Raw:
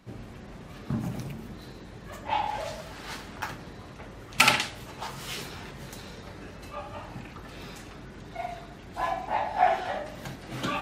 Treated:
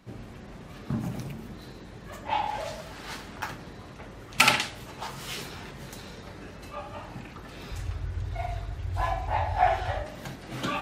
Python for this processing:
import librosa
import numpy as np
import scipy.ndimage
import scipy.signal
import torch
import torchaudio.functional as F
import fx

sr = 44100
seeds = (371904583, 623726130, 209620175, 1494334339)

y = fx.low_shelf_res(x, sr, hz=130.0, db=13.0, q=3.0, at=(7.71, 10.04))